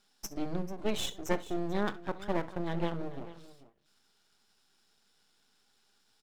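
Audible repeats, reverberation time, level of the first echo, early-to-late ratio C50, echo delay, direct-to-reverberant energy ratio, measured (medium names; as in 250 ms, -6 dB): 2, no reverb, -19.5 dB, no reverb, 67 ms, no reverb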